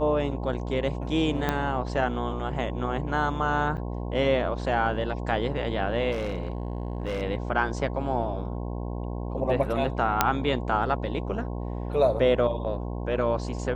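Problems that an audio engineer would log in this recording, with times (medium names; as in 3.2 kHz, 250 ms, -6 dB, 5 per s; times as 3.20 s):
buzz 60 Hz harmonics 18 -32 dBFS
1.49 s: pop -11 dBFS
3.77–3.78 s: dropout 7.3 ms
6.11–7.23 s: clipped -25 dBFS
10.21 s: pop -3 dBFS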